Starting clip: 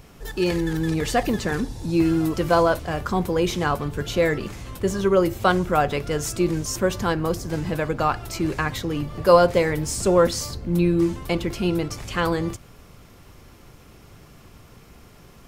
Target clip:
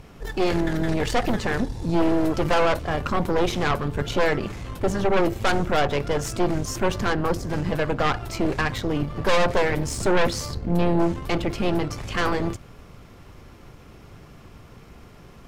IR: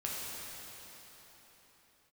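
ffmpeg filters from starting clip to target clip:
-af "aemphasis=mode=reproduction:type=cd,aeval=exprs='0.708*(cos(1*acos(clip(val(0)/0.708,-1,1)))-cos(1*PI/2))+0.0794*(cos(5*acos(clip(val(0)/0.708,-1,1)))-cos(5*PI/2))+0.282*(cos(6*acos(clip(val(0)/0.708,-1,1)))-cos(6*PI/2))':channel_layout=same,asoftclip=type=tanh:threshold=-10dB,volume=-2dB"

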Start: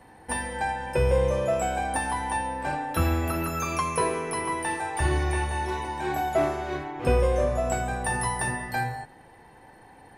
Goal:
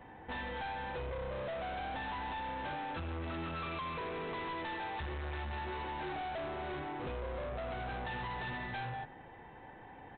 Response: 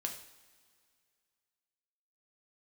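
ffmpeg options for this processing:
-af "acompressor=threshold=-26dB:ratio=6,aresample=8000,asoftclip=type=tanh:threshold=-36.5dB,aresample=44100,volume=-1dB"

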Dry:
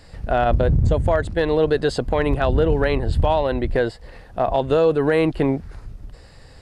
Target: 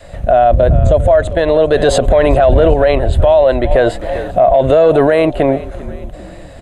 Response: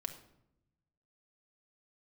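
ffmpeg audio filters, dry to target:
-filter_complex "[0:a]asplit=5[link_01][link_02][link_03][link_04][link_05];[link_02]adelay=396,afreqshift=-45,volume=-20.5dB[link_06];[link_03]adelay=792,afreqshift=-90,volume=-26.5dB[link_07];[link_04]adelay=1188,afreqshift=-135,volume=-32.5dB[link_08];[link_05]adelay=1584,afreqshift=-180,volume=-38.6dB[link_09];[link_01][link_06][link_07][link_08][link_09]amix=inputs=5:normalize=0,asettb=1/sr,asplit=3[link_10][link_11][link_12];[link_10]atrim=end=3.714[link_13];[link_11]atrim=start=3.71:end=5.07,asetpts=PTS-STARTPTS,afade=type=in:duration=0.004:curve=qsin,afade=type=out:start_time=1.356:duration=0.004:curve=qsin,acontrast=50[link_14];[link_12]atrim=start=5.066[link_15];[link_13][link_14]acrossfade=duration=0.004:curve1=hsin:curve2=qsin[link_16];[link_16][link_15]acrossfade=duration=0.004:curve1=qsin:curve2=hsin,adynamicequalizer=threshold=0.0224:dfrequency=170:dqfactor=0.91:tfrequency=170:tqfactor=0.91:attack=5:release=100:ratio=0.375:range=3:mode=cutabove:tftype=bell,asettb=1/sr,asplit=3[link_17][link_18][link_19];[link_17]atrim=end=1.724[link_20];[link_18]atrim=start=1.72:end=2.74,asetpts=PTS-STARTPTS,afade=type=in:duration=0.004:curve=qsin,afade=type=out:start_time=1.016:duration=0.004:curve=qsin,acontrast=84[link_21];[link_19]atrim=start=2.736[link_22];[link_20][link_21]acrossfade=duration=0.004:curve1=hsin:curve2=qsin[link_23];[link_23][link_22]acrossfade=duration=0.004:curve1=qsin:curve2=hsin,superequalizer=8b=3.55:14b=0.316,alimiter=level_in=10dB:limit=-1dB:release=50:level=0:latency=1,volume=-1dB"

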